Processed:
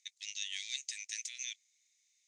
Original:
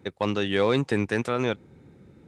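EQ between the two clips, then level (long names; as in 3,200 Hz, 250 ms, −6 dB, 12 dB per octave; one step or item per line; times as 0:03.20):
elliptic high-pass filter 2,000 Hz, stop band 40 dB
low-pass with resonance 6,400 Hz, resonance Q 6.5
first difference
−1.0 dB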